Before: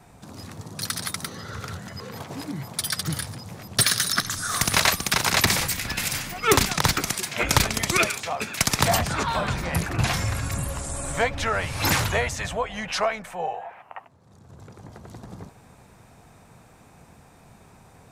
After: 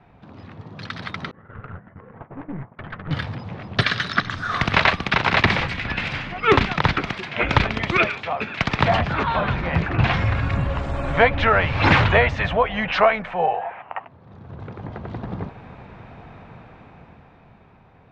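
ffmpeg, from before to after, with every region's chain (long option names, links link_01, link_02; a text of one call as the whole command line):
ffmpeg -i in.wav -filter_complex "[0:a]asettb=1/sr,asplit=3[link_01][link_02][link_03];[link_01]atrim=end=1.314[link_04];[link_02]atrim=start=1.31:end=3.11,asetpts=PTS-STARTPTS,afade=type=in:duration=0.004:curve=qsin,afade=type=out:start_time=1.796:duration=0.004:curve=qsin,agate=range=-33dB:threshold=-29dB:ratio=3:release=100:detection=peak,lowpass=frequency=1800:width=0.5412,lowpass=frequency=1800:width=1.3066,aeval=exprs='(tanh(56.2*val(0)+0.55)-tanh(0.55))/56.2':channel_layout=same[link_05];[link_03]atrim=start=3.106[link_06];[link_04][link_05]acrossfade=duration=0.004:curve1=hsin:curve2=qsin[link_07];[link_07][link_06]acrossfade=duration=0.004:curve1=qsin:curve2=hsin,lowpass=frequency=3200:width=0.5412,lowpass=frequency=3200:width=1.3066,dynaudnorm=framelen=140:gausssize=21:maxgain=11.5dB,volume=-1dB" out.wav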